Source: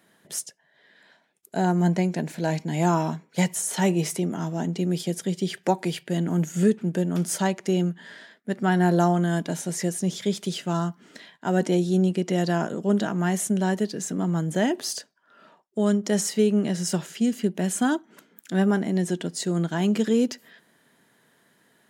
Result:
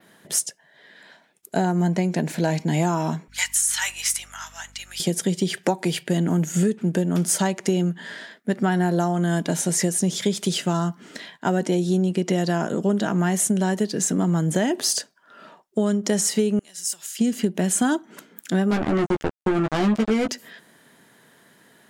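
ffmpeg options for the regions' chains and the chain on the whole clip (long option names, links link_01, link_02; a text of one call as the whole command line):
ffmpeg -i in.wav -filter_complex "[0:a]asettb=1/sr,asplit=3[link_01][link_02][link_03];[link_01]atrim=end=3.284[link_04];[link_02]atrim=start=3.28:end=5,asetpts=PTS-STARTPTS,afade=type=in:duration=0.004:curve=qsin,afade=type=out:start_time=1.716:duration=0.004:curve=qsin,deesser=0.35,highpass=frequency=1300:width=0.5412,highpass=frequency=1300:width=1.3066,aeval=exprs='val(0)+0.00126*(sin(2*PI*50*n/s)+sin(2*PI*2*50*n/s)/2+sin(2*PI*3*50*n/s)/3+sin(2*PI*4*50*n/s)/4+sin(2*PI*5*50*n/s)/5)':channel_layout=same[link_05];[link_03]atrim=start=4.996[link_06];[link_04][link_05]acrossfade=duration=0.004:curve1=hsin:curve2=qsin[link_07];[link_07][link_06]acrossfade=duration=0.004:curve1=qsin:curve2=hsin,asettb=1/sr,asplit=3[link_08][link_09][link_10];[link_08]atrim=end=16.594[link_11];[link_09]atrim=start=16.59:end=17.19,asetpts=PTS-STARTPTS,afade=type=in:duration=0.004:curve=qsin,afade=type=out:start_time=0.596:duration=0.004:curve=qsin,acompressor=threshold=-30dB:ratio=6:attack=3.2:release=140:knee=1:detection=peak,aderivative[link_12];[link_10]atrim=start=17.186[link_13];[link_11][link_12]acrossfade=duration=0.004:curve1=hsin:curve2=qsin[link_14];[link_14][link_13]acrossfade=duration=0.004:curve1=qsin:curve2=hsin,asettb=1/sr,asplit=3[link_15][link_16][link_17];[link_15]atrim=end=18.714[link_18];[link_16]atrim=start=18.71:end=20.29,asetpts=PTS-STARTPTS,afade=type=in:duration=0.004:curve=qsin,afade=type=out:start_time=1.576:duration=0.004:curve=qsin,lowpass=frequency=1600:poles=1,acrusher=bits=3:mix=0:aa=0.5,asplit=2[link_19][link_20];[link_20]adelay=14,volume=-4dB[link_21];[link_19][link_21]amix=inputs=2:normalize=0,atrim=end_sample=69678[link_22];[link_17]atrim=start=20.286[link_23];[link_18][link_22]acrossfade=duration=0.004:curve1=hsin:curve2=qsin[link_24];[link_24][link_23]acrossfade=duration=0.004:curve1=qsin:curve2=hsin,adynamicequalizer=threshold=0.00794:dfrequency=8700:dqfactor=1:tfrequency=8700:tqfactor=1:attack=5:release=100:ratio=0.375:range=2:mode=boostabove:tftype=bell,acompressor=threshold=-25dB:ratio=6,volume=7.5dB" out.wav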